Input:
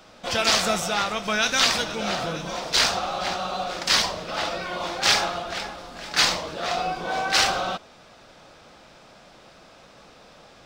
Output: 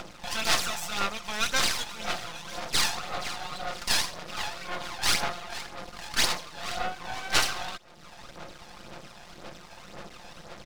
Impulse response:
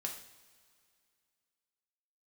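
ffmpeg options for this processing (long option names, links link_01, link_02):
-filter_complex "[0:a]acrossover=split=680[link_01][link_02];[link_01]acompressor=threshold=-43dB:ratio=6[link_03];[link_03][link_02]amix=inputs=2:normalize=0,aecho=1:1:5.7:0.45,asplit=2[link_04][link_05];[link_05]aeval=exprs='sgn(val(0))*max(abs(val(0))-0.0112,0)':channel_layout=same,volume=-4.5dB[link_06];[link_04][link_06]amix=inputs=2:normalize=0,acompressor=mode=upward:threshold=-25dB:ratio=2.5,aphaser=in_gain=1:out_gain=1:delay=1.2:decay=0.55:speed=1.9:type=sinusoidal,aeval=exprs='max(val(0),0)':channel_layout=same,volume=-7dB"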